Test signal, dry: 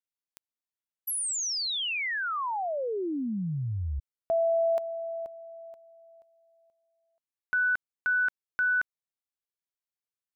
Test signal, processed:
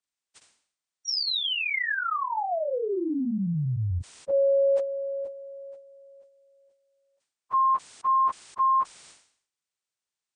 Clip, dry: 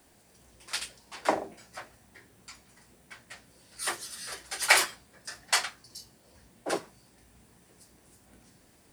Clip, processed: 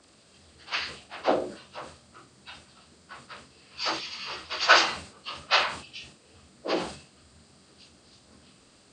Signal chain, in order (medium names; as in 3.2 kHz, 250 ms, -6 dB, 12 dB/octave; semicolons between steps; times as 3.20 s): frequency axis rescaled in octaves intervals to 81%; decay stretcher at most 98 dB/s; trim +4.5 dB